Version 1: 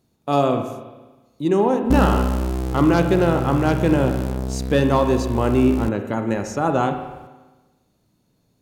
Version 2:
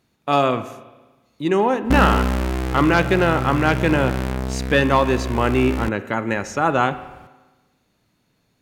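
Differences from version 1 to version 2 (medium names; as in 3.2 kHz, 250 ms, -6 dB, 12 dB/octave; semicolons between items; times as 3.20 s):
speech: send -8.0 dB; master: add peaking EQ 2 kHz +11.5 dB 1.9 oct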